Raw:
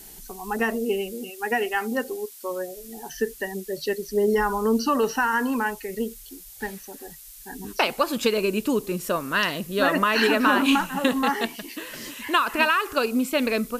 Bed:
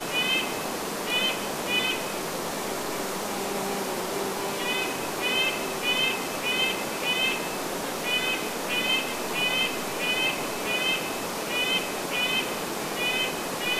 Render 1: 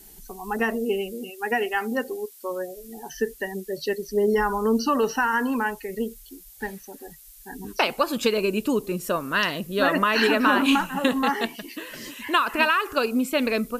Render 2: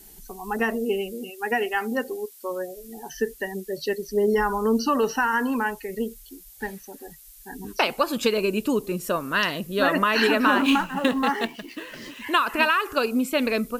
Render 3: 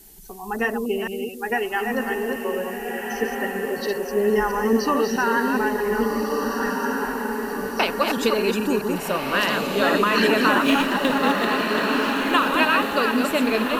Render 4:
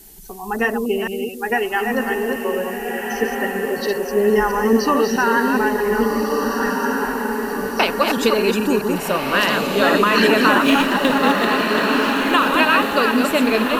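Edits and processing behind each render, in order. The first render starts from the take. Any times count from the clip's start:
noise reduction 6 dB, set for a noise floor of -45 dBFS
10.50–12.26 s: median filter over 5 samples
chunks repeated in reverse 215 ms, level -4.5 dB; echo that smears into a reverb 1544 ms, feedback 50%, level -3.5 dB
trim +4 dB; peak limiter -3 dBFS, peak gain reduction 2 dB

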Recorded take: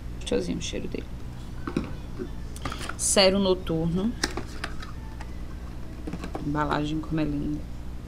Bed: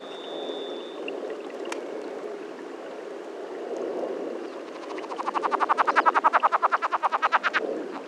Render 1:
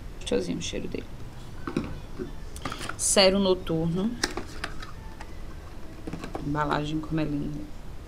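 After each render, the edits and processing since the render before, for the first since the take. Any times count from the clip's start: hum notches 60/120/180/240/300 Hz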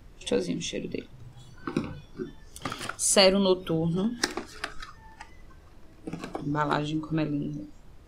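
noise print and reduce 11 dB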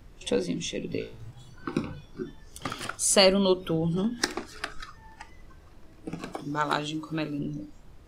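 0.87–1.31 s: flutter echo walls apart 3.1 m, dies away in 0.34 s; 6.32–7.39 s: tilt EQ +2 dB/octave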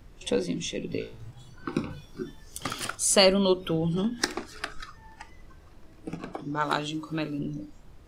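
1.90–2.95 s: treble shelf 4.3 kHz +8 dB; 3.57–4.10 s: dynamic bell 2.8 kHz, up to +4 dB, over -52 dBFS, Q 1.2; 6.16–6.61 s: treble shelf 3.6 kHz -> 5.1 kHz -12 dB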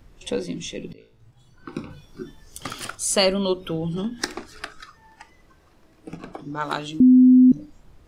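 0.93–2.21 s: fade in, from -20 dB; 4.66–6.11 s: bass shelf 140 Hz -9 dB; 7.00–7.52 s: bleep 254 Hz -8.5 dBFS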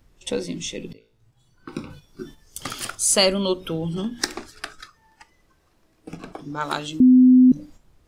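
gate -42 dBFS, range -7 dB; treble shelf 4.1 kHz +6 dB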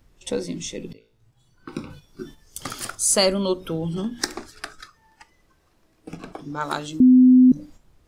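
dynamic bell 2.9 kHz, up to -6 dB, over -46 dBFS, Q 1.8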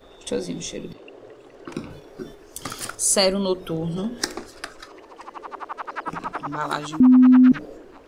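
add bed -11 dB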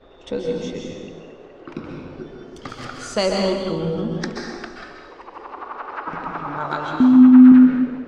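distance through air 190 m; plate-style reverb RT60 1.3 s, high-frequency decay 0.95×, pre-delay 115 ms, DRR 0 dB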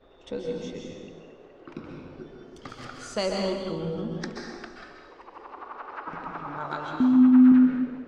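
trim -7.5 dB

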